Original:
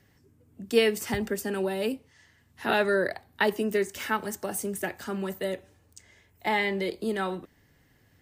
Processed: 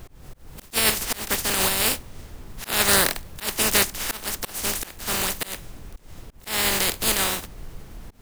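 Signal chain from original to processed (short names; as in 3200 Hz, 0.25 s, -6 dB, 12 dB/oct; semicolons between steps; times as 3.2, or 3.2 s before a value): spectral contrast lowered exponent 0.2; added noise brown -44 dBFS; auto swell 0.22 s; gain +7 dB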